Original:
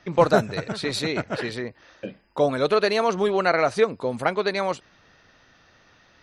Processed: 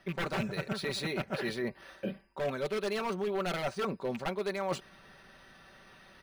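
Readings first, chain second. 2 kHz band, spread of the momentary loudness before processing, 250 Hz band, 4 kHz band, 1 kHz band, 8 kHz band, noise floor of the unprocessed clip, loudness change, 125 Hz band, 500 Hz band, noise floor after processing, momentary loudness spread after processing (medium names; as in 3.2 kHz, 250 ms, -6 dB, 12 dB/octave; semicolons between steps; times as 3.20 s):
-10.0 dB, 15 LU, -8.0 dB, -9.0 dB, -12.5 dB, -8.5 dB, -58 dBFS, -11.5 dB, -7.5 dB, -12.0 dB, -59 dBFS, 6 LU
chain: rattle on loud lows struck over -28 dBFS, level -22 dBFS; wavefolder -16 dBFS; comb 5.2 ms, depth 57%; reverse; compression 6:1, threshold -31 dBFS, peak gain reduction 13.5 dB; reverse; decimation joined by straight lines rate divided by 3×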